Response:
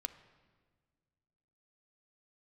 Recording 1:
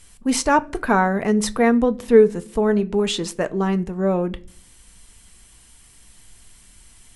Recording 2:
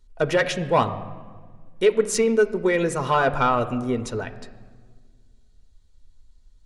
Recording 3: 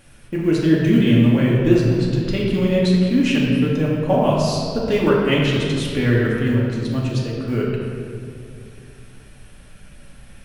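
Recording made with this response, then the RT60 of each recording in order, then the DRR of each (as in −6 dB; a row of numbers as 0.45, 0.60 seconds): 2; non-exponential decay, 1.6 s, 2.5 s; 10.5, 8.0, −5.0 decibels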